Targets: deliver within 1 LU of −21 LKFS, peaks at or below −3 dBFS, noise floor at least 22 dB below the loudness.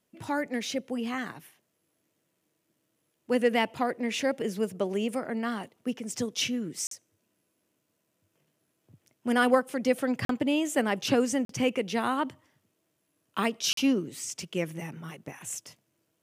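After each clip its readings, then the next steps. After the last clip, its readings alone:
number of dropouts 4; longest dropout 43 ms; integrated loudness −29.5 LKFS; sample peak −9.0 dBFS; target loudness −21.0 LKFS
→ repair the gap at 0:06.87/0:10.25/0:11.45/0:13.73, 43 ms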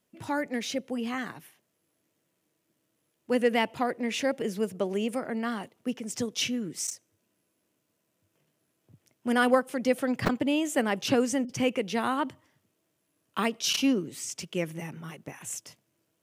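number of dropouts 0; integrated loudness −29.5 LKFS; sample peak −9.0 dBFS; target loudness −21.0 LKFS
→ level +8.5 dB
brickwall limiter −3 dBFS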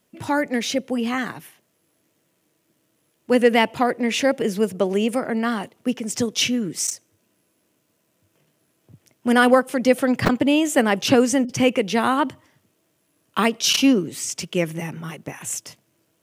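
integrated loudness −21.0 LKFS; sample peak −3.0 dBFS; background noise floor −69 dBFS

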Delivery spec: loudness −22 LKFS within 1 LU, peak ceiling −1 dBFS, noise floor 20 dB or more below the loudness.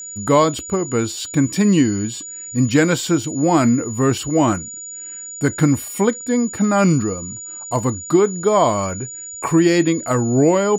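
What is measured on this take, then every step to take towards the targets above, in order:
interfering tone 6,900 Hz; level of the tone −30 dBFS; integrated loudness −18.0 LKFS; sample peak −1.5 dBFS; target loudness −22.0 LKFS
→ notch filter 6,900 Hz, Q 30
level −4 dB

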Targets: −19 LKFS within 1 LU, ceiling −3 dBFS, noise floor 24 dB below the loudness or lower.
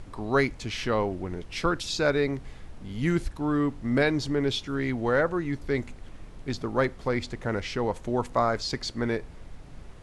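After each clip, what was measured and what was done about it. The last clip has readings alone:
background noise floor −46 dBFS; target noise floor −52 dBFS; integrated loudness −28.0 LKFS; sample peak −10.5 dBFS; target loudness −19.0 LKFS
→ noise reduction from a noise print 6 dB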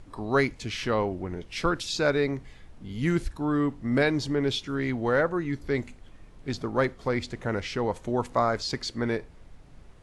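background noise floor −51 dBFS; target noise floor −52 dBFS
→ noise reduction from a noise print 6 dB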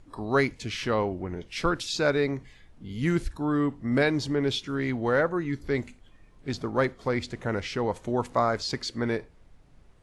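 background noise floor −56 dBFS; integrated loudness −28.0 LKFS; sample peak −11.0 dBFS; target loudness −19.0 LKFS
→ level +9 dB
brickwall limiter −3 dBFS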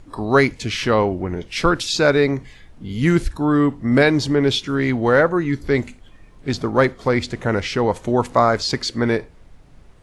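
integrated loudness −19.0 LKFS; sample peak −3.0 dBFS; background noise floor −47 dBFS

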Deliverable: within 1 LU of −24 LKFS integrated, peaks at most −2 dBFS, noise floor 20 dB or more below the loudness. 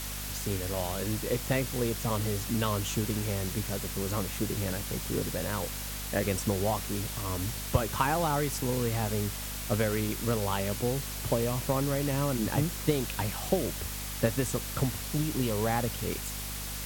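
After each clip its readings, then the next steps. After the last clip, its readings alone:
mains hum 50 Hz; hum harmonics up to 250 Hz; level of the hum −38 dBFS; background noise floor −37 dBFS; target noise floor −51 dBFS; integrated loudness −30.5 LKFS; sample peak −11.5 dBFS; target loudness −24.0 LKFS
→ hum removal 50 Hz, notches 5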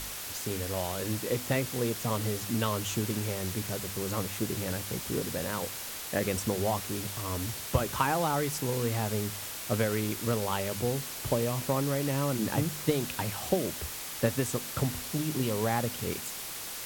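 mains hum none found; background noise floor −39 dBFS; target noise floor −51 dBFS
→ broadband denoise 12 dB, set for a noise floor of −39 dBFS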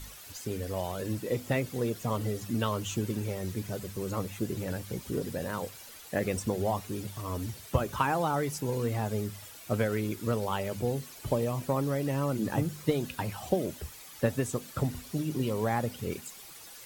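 background noise floor −49 dBFS; target noise floor −53 dBFS
→ broadband denoise 6 dB, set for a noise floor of −49 dBFS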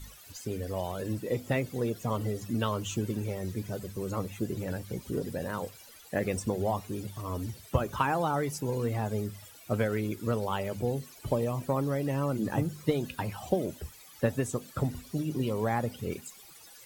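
background noise floor −53 dBFS; integrated loudness −32.5 LKFS; sample peak −12.5 dBFS; target loudness −24.0 LKFS
→ level +8.5 dB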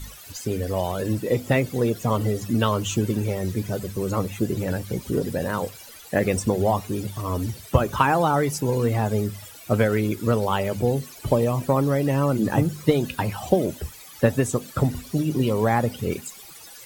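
integrated loudness −24.0 LKFS; sample peak −4.0 dBFS; background noise floor −44 dBFS

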